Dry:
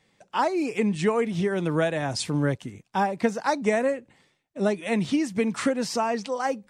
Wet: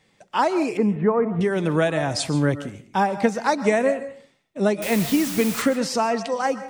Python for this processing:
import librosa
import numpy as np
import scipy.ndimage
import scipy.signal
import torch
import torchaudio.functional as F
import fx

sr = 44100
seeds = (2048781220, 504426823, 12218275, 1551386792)

y = fx.lowpass(x, sr, hz=1500.0, slope=24, at=(0.77, 1.41))
y = fx.quant_dither(y, sr, seeds[0], bits=6, dither='triangular', at=(4.82, 5.62))
y = fx.rev_freeverb(y, sr, rt60_s=0.4, hf_ratio=0.6, predelay_ms=95, drr_db=12.5)
y = F.gain(torch.from_numpy(y), 3.5).numpy()